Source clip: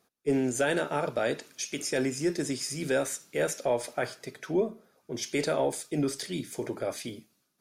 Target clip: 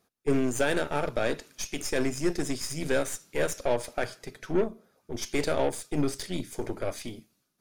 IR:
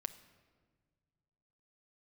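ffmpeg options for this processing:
-af "aeval=exprs='0.168*(cos(1*acos(clip(val(0)/0.168,-1,1)))-cos(1*PI/2))+0.0168*(cos(3*acos(clip(val(0)/0.168,-1,1)))-cos(3*PI/2))+0.00944*(cos(8*acos(clip(val(0)/0.168,-1,1)))-cos(8*PI/2))':c=same,lowshelf=f=100:g=9.5,volume=1.5dB"

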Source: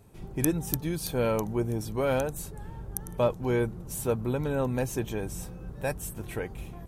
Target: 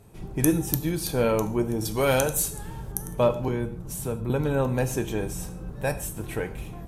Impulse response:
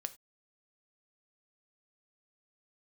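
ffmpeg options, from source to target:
-filter_complex "[0:a]asettb=1/sr,asplit=3[a][b][c];[a]atrim=end=1.854[d];[b]atrim=start=1.85:end=2.92,asetpts=PTS-STARTPTS,afade=t=in:d=0.004:c=qsin,afade=t=out:st=1.066:d=0.004:c=qsin,highshelf=f=2.6k:g=11.5[e];[c]atrim=start=2.916[f];[d][e]acrossfade=d=0.004:c1=hsin:c2=qsin[g];[g][f]acrossfade=d=0.004:c1=qsin:c2=hsin,asettb=1/sr,asplit=3[h][i][j];[h]atrim=end=3.484[k];[i]atrim=start=3.48:end=4.3,asetpts=PTS-STARTPTS,afade=t=in:d=0.004:c=qsin,afade=t=out:st=0.816:d=0.004:c=qsin,acrossover=split=200[l][m];[m]acompressor=threshold=-39dB:ratio=2[n];[l][n]amix=inputs=2:normalize=0[o];[j]atrim=start=4.296[p];[k][o]acrossfade=d=0.004:c1=hsin:c2=qsin[q];[q][p]acrossfade=d=0.004:c1=qsin:c2=hsin[r];[1:a]atrim=start_sample=2205,asetrate=26901,aresample=44100[s];[r][s]afir=irnorm=-1:irlink=0,volume=3dB"

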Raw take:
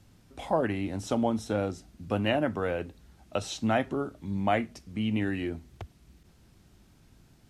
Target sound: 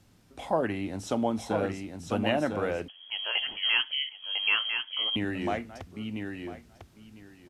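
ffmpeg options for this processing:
-filter_complex "[0:a]lowshelf=f=130:g=-6,aecho=1:1:1000|2000|3000:0.531|0.0903|0.0153,asettb=1/sr,asplit=3[a][b][c];[a]atrim=end=2.884[d];[b]atrim=start=2.88:end=5.16,asetpts=PTS-STARTPTS,afade=t=in:d=0.004:c=qsin,afade=t=out:st=2.276:d=0.004:c=qsin,lowpass=f=2.9k:t=q:w=0.5098,lowpass=f=2.9k:t=q:w=0.6013,lowpass=f=2.9k:t=q:w=0.9,lowpass=f=2.9k:t=q:w=2.563,afreqshift=-3400[e];[c]atrim=start=5.156[f];[d][e]acrossfade=d=0.004:c1=hsin:c2=qsin[g];[g][f]acrossfade=d=0.004:c1=qsin:c2=hsin"

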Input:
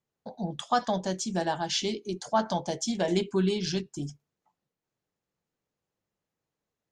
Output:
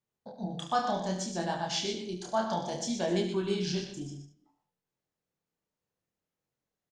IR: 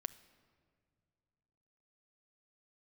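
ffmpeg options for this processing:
-filter_complex "[0:a]aecho=1:1:72:0.335,asplit=2[a][b];[1:a]atrim=start_sample=2205,afade=t=out:st=0.39:d=0.01,atrim=end_sample=17640,adelay=121[c];[b][c]afir=irnorm=-1:irlink=0,volume=-5.5dB[d];[a][d]amix=inputs=2:normalize=0,flanger=delay=22.5:depth=7.8:speed=0.62,volume=-1dB"

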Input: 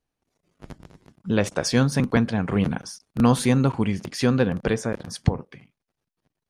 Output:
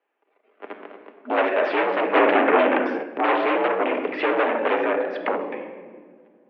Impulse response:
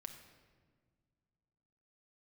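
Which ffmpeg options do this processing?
-filter_complex "[1:a]atrim=start_sample=2205[a];[0:a][a]afir=irnorm=-1:irlink=0,asplit=2[b][c];[c]aeval=exprs='0.316*sin(PI/2*7.08*val(0)/0.316)':c=same,volume=-9dB[d];[b][d]amix=inputs=2:normalize=0,asettb=1/sr,asplit=3[e][f][g];[e]atrim=end=2.154[h];[f]atrim=start=2.15:end=3.03,asetpts=PTS-STARTPTS,afade=t=in:d=0.004:c=qsin,afade=t=out:st=0.876:d=0.004:c=qsin,acontrast=35[i];[g]atrim=start=3.026[j];[h][i]acrossfade=d=0.004:c1=hsin:c2=qsin[k];[k][j]acrossfade=d=0.004:c1=qsin:c2=hsin,highpass=f=310:t=q:w=0.5412,highpass=f=310:t=q:w=1.307,lowpass=f=2.7k:t=q:w=0.5176,lowpass=f=2.7k:t=q:w=0.7071,lowpass=f=2.7k:t=q:w=1.932,afreqshift=56,volume=2.5dB"

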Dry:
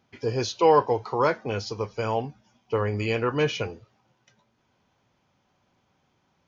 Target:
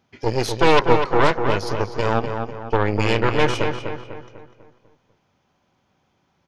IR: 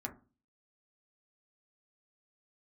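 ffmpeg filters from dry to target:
-filter_complex "[0:a]asplit=2[a][b];[b]aecho=0:1:223|446|669:0.112|0.0438|0.0171[c];[a][c]amix=inputs=2:normalize=0,aeval=exprs='0.422*(cos(1*acos(clip(val(0)/0.422,-1,1)))-cos(1*PI/2))+0.133*(cos(6*acos(clip(val(0)/0.422,-1,1)))-cos(6*PI/2))':c=same,asplit=2[d][e];[e]adelay=248,lowpass=f=2.7k:p=1,volume=-6dB,asplit=2[f][g];[g]adelay=248,lowpass=f=2.7k:p=1,volume=0.46,asplit=2[h][i];[i]adelay=248,lowpass=f=2.7k:p=1,volume=0.46,asplit=2[j][k];[k]adelay=248,lowpass=f=2.7k:p=1,volume=0.46,asplit=2[l][m];[m]adelay=248,lowpass=f=2.7k:p=1,volume=0.46,asplit=2[n][o];[o]adelay=248,lowpass=f=2.7k:p=1,volume=0.46[p];[f][h][j][l][n][p]amix=inputs=6:normalize=0[q];[d][q]amix=inputs=2:normalize=0,volume=1.5dB"

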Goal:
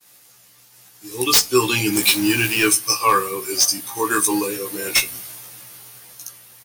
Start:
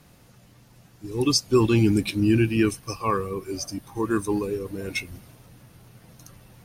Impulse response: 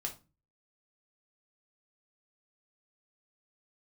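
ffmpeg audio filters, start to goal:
-filter_complex "[0:a]asettb=1/sr,asplit=3[a][b][c];[a]atrim=end=1.934[d];[b]atrim=start=1.93:end=2.68,asetpts=PTS-STARTPTS,afade=t=in:d=0.004:c=qsin,afade=t=out:st=0.746:d=0.004:c=qsin,aeval=exprs='val(0)+0.5*0.0211*sgn(val(0))':c=same[e];[c]atrim=start=2.676[f];[d][e]acrossfade=d=0.004:c1=hsin:c2=qsin[g];[g][f]acrossfade=d=0.004:c1=qsin:c2=hsin,agate=range=-33dB:threshold=-51dB:ratio=3:detection=peak,highpass=f=1.2k:p=1,dynaudnorm=f=320:g=7:m=8dB,crystalizer=i=2:c=0,aeval=exprs='0.282*(abs(mod(val(0)/0.282+3,4)-2)-1)':c=same,asplit=2[h][i];[i]adelay=16,volume=-3dB[j];[h][j]amix=inputs=2:normalize=0,asplit=2[k][l];[1:a]atrim=start_sample=2205[m];[l][m]afir=irnorm=-1:irlink=0,volume=-6dB[n];[k][n]amix=inputs=2:normalize=0"

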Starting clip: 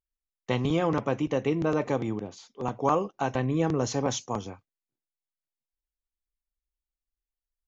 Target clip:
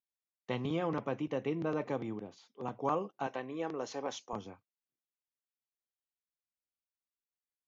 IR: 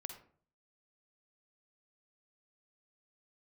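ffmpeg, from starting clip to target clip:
-af "asetnsamples=n=441:p=0,asendcmd='3.27 highpass f 370;4.33 highpass f 120',highpass=120,lowpass=4.7k,volume=-8dB"

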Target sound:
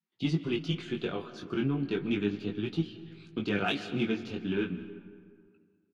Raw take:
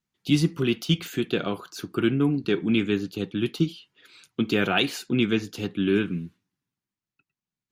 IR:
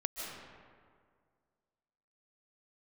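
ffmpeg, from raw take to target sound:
-filter_complex "[0:a]lowpass=3.9k,atempo=1.3,asplit=2[a][b];[b]asoftclip=type=tanh:threshold=-19.5dB,volume=-6.5dB[c];[a][c]amix=inputs=2:normalize=0,flanger=delay=18:depth=4.5:speed=0.35,asplit=2[d][e];[1:a]atrim=start_sample=2205[f];[e][f]afir=irnorm=-1:irlink=0,volume=-11dB[g];[d][g]amix=inputs=2:normalize=0,volume=-8dB" -ar 32000 -c:a libvorbis -b:a 48k

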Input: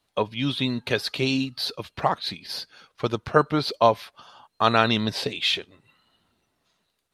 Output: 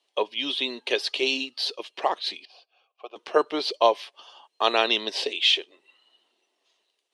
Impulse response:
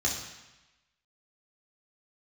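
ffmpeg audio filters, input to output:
-filter_complex "[0:a]asettb=1/sr,asplit=3[a][b][c];[a]atrim=end=2.454[d];[b]atrim=start=2.45:end=3.16,asetpts=PTS-STARTPTS,afade=t=in:d=0.004:c=qsin,afade=t=out:st=0.706:d=0.004:c=qsin,asplit=3[e][f][g];[e]bandpass=f=730:t=q:w=8,volume=0dB[h];[f]bandpass=f=1.09k:t=q:w=8,volume=-6dB[i];[g]bandpass=f=2.44k:t=q:w=8,volume=-9dB[j];[h][i][j]amix=inputs=3:normalize=0[k];[c]atrim=start=3.156[l];[d][k]acrossfade=d=0.004:c1=hsin:c2=qsin[m];[m][l]acrossfade=d=0.004:c1=qsin:c2=hsin,highpass=f=350:w=0.5412,highpass=f=350:w=1.3066,equalizer=f=370:t=q:w=4:g=4,equalizer=f=1.4k:t=q:w=4:g=-9,equalizer=f=3k:t=q:w=4:g=8,equalizer=f=5.6k:t=q:w=4:g=3,lowpass=f=9.7k:w=0.5412,lowpass=f=9.7k:w=1.3066,volume=-1dB"

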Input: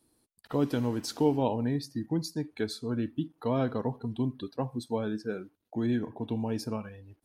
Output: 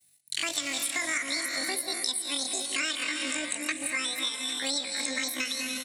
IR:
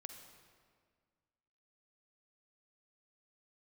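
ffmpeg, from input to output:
-filter_complex "[0:a]highshelf=f=3.9k:g=5.5,bandreject=f=50:t=h:w=6,bandreject=f=100:t=h:w=6,bandreject=f=150:t=h:w=6,bandreject=f=200:t=h:w=6,bandreject=f=250:t=h:w=6,bandreject=f=300:t=h:w=6,bandreject=f=350:t=h:w=6,bandreject=f=400:t=h:w=6,bandreject=f=450:t=h:w=6,agate=range=-33dB:threshold=-59dB:ratio=3:detection=peak,bandreject=f=1.4k:w=19,aecho=1:1:1003:0.0944,asetrate=103194,aresample=44100,equalizer=f=125:t=o:w=1:g=12,equalizer=f=500:t=o:w=1:g=-8,equalizer=f=1k:t=o:w=1:g=-12,equalizer=f=2k:t=o:w=1:g=7,equalizer=f=4k:t=o:w=1:g=10,equalizer=f=8k:t=o:w=1:g=8[a];[1:a]atrim=start_sample=2205,atrim=end_sample=6615,asetrate=22491,aresample=44100[b];[a][b]afir=irnorm=-1:irlink=0,crystalizer=i=5:c=0,acrossover=split=7500[c][d];[d]acompressor=threshold=-41dB:ratio=4:attack=1:release=60[e];[c][e]amix=inputs=2:normalize=0,atempo=0.53,acompressor=threshold=-33dB:ratio=6,volume=5.5dB"

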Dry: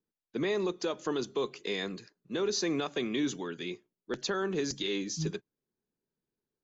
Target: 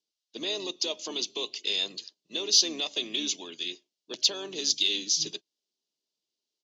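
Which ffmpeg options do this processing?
-filter_complex "[0:a]highpass=270,equalizer=f=320:t=q:w=4:g=4,equalizer=f=630:t=q:w=4:g=9,equalizer=f=960:t=q:w=4:g=4,equalizer=f=1.4k:t=q:w=4:g=-7,equalizer=f=2.8k:t=q:w=4:g=9,lowpass=f=5.5k:w=0.5412,lowpass=f=5.5k:w=1.3066,aexciter=amount=11.8:drive=7.2:freq=3.4k,asplit=2[a][b];[b]asetrate=33038,aresample=44100,atempo=1.33484,volume=-12dB[c];[a][c]amix=inputs=2:normalize=0,volume=-8dB"

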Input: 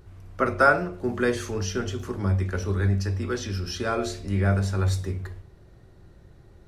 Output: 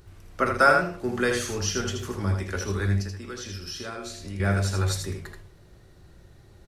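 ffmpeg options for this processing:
-filter_complex "[0:a]highshelf=f=2.1k:g=8.5,asettb=1/sr,asplit=3[a][b][c];[a]atrim=end=3.004[d];[b]atrim=start=3:end=4.4,asetpts=PTS-STARTPTS,afade=t=in:d=0.004:c=qsin,afade=t=out:st=1.396:d=0.004:c=qsin,acompressor=threshold=-32dB:ratio=6[e];[c]atrim=start=4.396[f];[d][e]acrossfade=d=0.004:c1=hsin:c2=qsin[g];[g][f]acrossfade=d=0.004:c1=qsin:c2=hsin,aecho=1:1:80:0.531,volume=-2dB"

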